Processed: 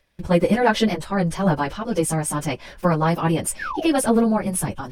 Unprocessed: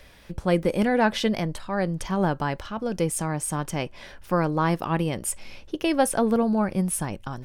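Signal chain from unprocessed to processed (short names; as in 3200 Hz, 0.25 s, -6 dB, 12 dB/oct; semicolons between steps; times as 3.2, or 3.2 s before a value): painted sound fall, 5.45–5.82, 590–1900 Hz -32 dBFS; plain phase-vocoder stretch 0.66×; gate with hold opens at -39 dBFS; gain +7.5 dB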